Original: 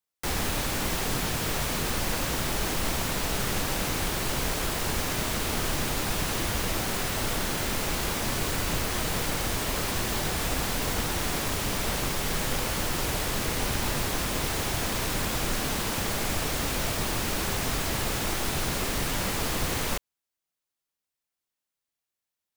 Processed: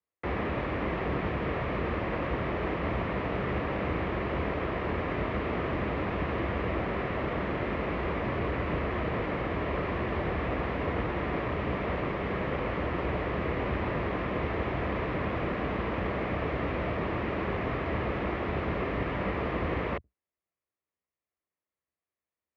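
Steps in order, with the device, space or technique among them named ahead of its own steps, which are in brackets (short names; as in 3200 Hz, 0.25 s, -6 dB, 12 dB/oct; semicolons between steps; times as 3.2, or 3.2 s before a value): sub-octave bass pedal (octaver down 2 oct, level -2 dB; speaker cabinet 65–2000 Hz, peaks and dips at 99 Hz -7 dB, 150 Hz -6 dB, 240 Hz -5 dB, 840 Hz -7 dB, 1500 Hz -9 dB); gain +3.5 dB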